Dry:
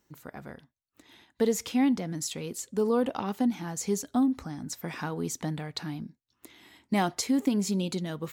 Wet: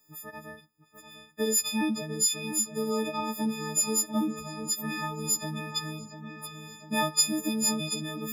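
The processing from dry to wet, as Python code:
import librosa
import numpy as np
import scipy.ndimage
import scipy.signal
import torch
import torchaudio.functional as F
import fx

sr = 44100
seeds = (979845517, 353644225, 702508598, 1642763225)

y = fx.freq_snap(x, sr, grid_st=6)
y = fx.echo_wet_lowpass(y, sr, ms=695, feedback_pct=63, hz=3200.0, wet_db=-10)
y = F.gain(torch.from_numpy(y), -4.0).numpy()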